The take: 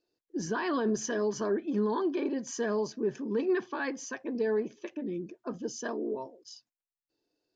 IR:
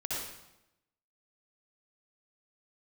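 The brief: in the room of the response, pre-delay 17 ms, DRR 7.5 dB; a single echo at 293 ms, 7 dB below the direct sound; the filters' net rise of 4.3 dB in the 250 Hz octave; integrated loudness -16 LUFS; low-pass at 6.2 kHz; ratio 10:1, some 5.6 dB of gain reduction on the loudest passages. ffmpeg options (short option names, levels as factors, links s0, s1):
-filter_complex "[0:a]lowpass=6200,equalizer=f=250:t=o:g=5.5,acompressor=threshold=0.0447:ratio=10,aecho=1:1:293:0.447,asplit=2[s0][s1];[1:a]atrim=start_sample=2205,adelay=17[s2];[s1][s2]afir=irnorm=-1:irlink=0,volume=0.251[s3];[s0][s3]amix=inputs=2:normalize=0,volume=6.31"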